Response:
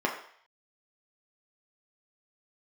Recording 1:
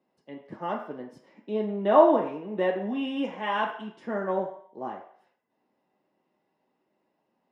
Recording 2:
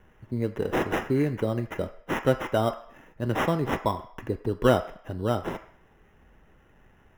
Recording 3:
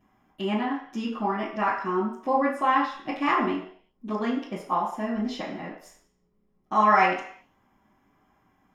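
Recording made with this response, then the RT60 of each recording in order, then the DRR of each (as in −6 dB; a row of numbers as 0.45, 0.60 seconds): 1; 0.60, 0.60, 0.60 seconds; −1.0, 8.0, −11.0 decibels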